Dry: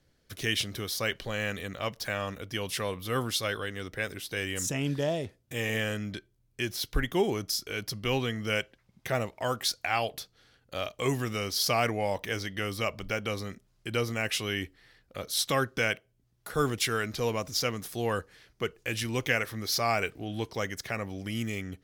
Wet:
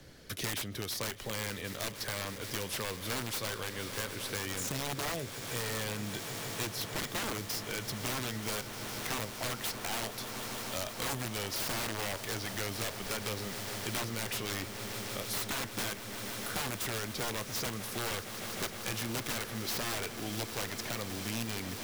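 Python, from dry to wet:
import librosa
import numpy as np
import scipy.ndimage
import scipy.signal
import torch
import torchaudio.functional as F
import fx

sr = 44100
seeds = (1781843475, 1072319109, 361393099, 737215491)

y = (np.mod(10.0 ** (24.5 / 20.0) * x + 1.0, 2.0) - 1.0) / 10.0 ** (24.5 / 20.0)
y = fx.echo_swell(y, sr, ms=154, loudest=8, wet_db=-18)
y = fx.band_squash(y, sr, depth_pct=70)
y = F.gain(torch.from_numpy(y), -5.0).numpy()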